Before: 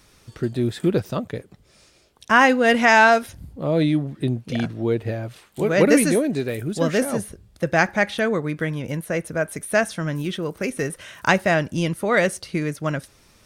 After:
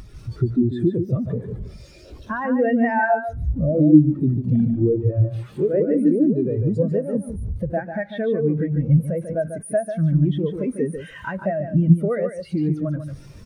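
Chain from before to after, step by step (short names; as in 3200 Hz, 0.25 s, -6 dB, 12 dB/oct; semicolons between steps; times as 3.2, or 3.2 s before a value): zero-crossing step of -21.5 dBFS; compressor 5:1, threshold -21 dBFS, peak gain reduction 11.5 dB; on a send: feedback echo 0.145 s, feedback 21%, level -3.5 dB; on the sum: spectral expander 2.5:1; gain +7 dB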